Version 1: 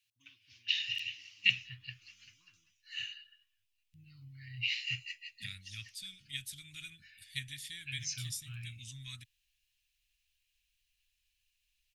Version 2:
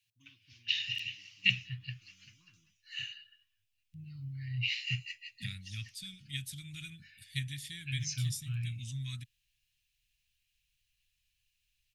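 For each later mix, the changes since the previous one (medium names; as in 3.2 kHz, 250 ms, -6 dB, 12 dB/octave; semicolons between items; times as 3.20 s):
master: add peaking EQ 160 Hz +11.5 dB 1.9 oct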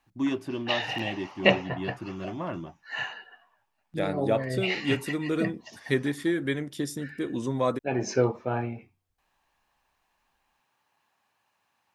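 first voice: remove two resonant band-passes 580 Hz, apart 1.6 oct; second voice: entry -1.45 s; master: remove elliptic band-stop 120–2700 Hz, stop band 80 dB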